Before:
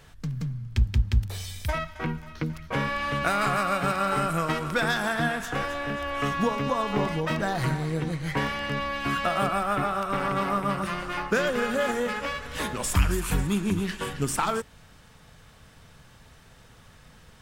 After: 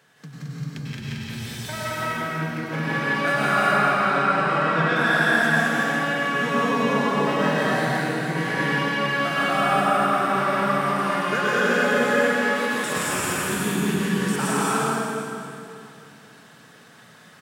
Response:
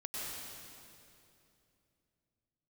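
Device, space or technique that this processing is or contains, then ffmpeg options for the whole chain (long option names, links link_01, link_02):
stadium PA: -filter_complex "[0:a]asettb=1/sr,asplit=3[link_01][link_02][link_03];[link_01]atrim=end=3.384[link_04];[link_02]atrim=start=3.38:end=4.96,asetpts=PTS-STARTPTS,afade=type=in:duration=0.004:curve=qsin,afade=type=out:start_time=1.576:duration=0.004:curve=qsin,lowpass=3800[link_05];[link_03]atrim=start=4.956[link_06];[link_04][link_05]acrossfade=duration=0.004:curve1=hsin:curve2=qsin[link_07];[link_07][link_06]acrossfade=duration=0.004:curve1=qsin:curve2=hsin,highpass=frequency=160:width=0.5412,highpass=frequency=160:width=1.3066,equalizer=frequency=1600:width_type=o:width=0.27:gain=6,aecho=1:1:169.1|218.7:0.708|0.891[link_08];[1:a]atrim=start_sample=2205[link_09];[link_08][link_09]afir=irnorm=-1:irlink=0"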